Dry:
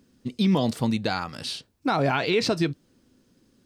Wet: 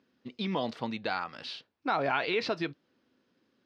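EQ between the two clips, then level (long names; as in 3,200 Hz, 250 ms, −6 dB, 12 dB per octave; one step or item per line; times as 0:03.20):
high-pass filter 830 Hz 6 dB per octave
high-frequency loss of the air 250 metres
0.0 dB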